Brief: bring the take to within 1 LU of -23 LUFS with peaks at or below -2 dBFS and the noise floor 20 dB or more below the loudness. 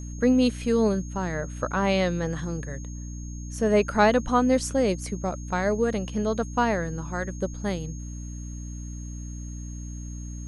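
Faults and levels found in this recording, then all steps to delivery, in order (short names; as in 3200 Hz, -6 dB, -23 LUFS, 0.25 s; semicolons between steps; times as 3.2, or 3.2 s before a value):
hum 60 Hz; harmonics up to 300 Hz; hum level -33 dBFS; steady tone 6500 Hz; tone level -46 dBFS; loudness -25.5 LUFS; peak -6.0 dBFS; loudness target -23.0 LUFS
-> de-hum 60 Hz, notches 5; notch 6500 Hz, Q 30; gain +2.5 dB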